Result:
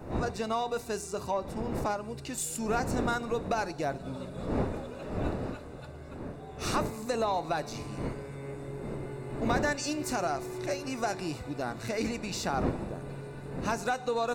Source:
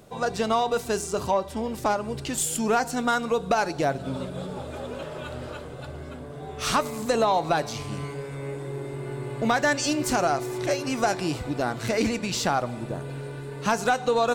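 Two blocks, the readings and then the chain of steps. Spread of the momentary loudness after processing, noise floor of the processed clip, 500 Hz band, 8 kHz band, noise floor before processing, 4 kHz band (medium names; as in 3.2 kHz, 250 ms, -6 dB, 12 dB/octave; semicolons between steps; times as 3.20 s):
10 LU, -44 dBFS, -6.5 dB, -7.5 dB, -38 dBFS, -8.0 dB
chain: wind noise 400 Hz -31 dBFS; Butterworth band-stop 3.2 kHz, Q 7.3; trim -7.5 dB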